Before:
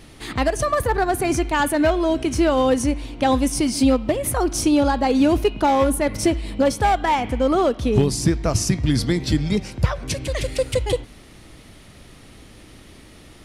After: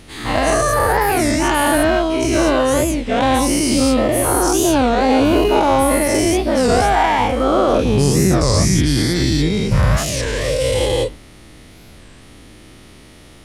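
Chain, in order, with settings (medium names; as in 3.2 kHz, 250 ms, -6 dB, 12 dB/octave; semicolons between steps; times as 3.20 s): every event in the spectrogram widened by 240 ms; warped record 33 1/3 rpm, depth 250 cents; trim -2.5 dB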